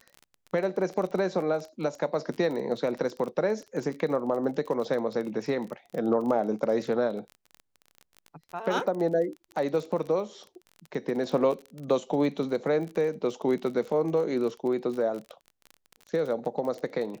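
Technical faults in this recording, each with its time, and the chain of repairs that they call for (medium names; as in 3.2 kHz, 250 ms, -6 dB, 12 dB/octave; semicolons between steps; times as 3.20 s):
crackle 29 per s -34 dBFS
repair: de-click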